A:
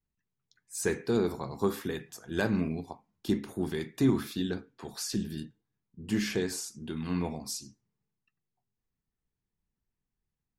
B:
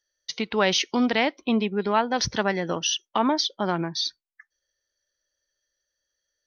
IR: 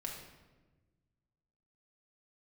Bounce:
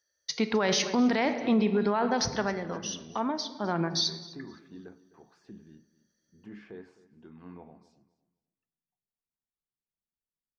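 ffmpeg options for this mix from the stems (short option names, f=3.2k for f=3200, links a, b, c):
-filter_complex "[0:a]lowpass=1.4k,alimiter=limit=-21.5dB:level=0:latency=1,lowshelf=f=200:g=-10.5,adelay=350,volume=-11dB,asplit=3[a][b][c];[b]volume=-19.5dB[d];[c]volume=-17.5dB[e];[1:a]highpass=62,equalizer=f=3k:w=2:g=-8,volume=9.5dB,afade=t=out:st=1.91:d=0.72:silence=0.316228,afade=t=in:st=3.59:d=0.35:silence=0.298538,asplit=3[f][g][h];[g]volume=-4.5dB[i];[h]volume=-18.5dB[j];[2:a]atrim=start_sample=2205[k];[d][i]amix=inputs=2:normalize=0[l];[l][k]afir=irnorm=-1:irlink=0[m];[e][j]amix=inputs=2:normalize=0,aecho=0:1:257|514|771|1028:1|0.22|0.0484|0.0106[n];[a][f][m][n]amix=inputs=4:normalize=0,alimiter=limit=-17dB:level=0:latency=1:release=14"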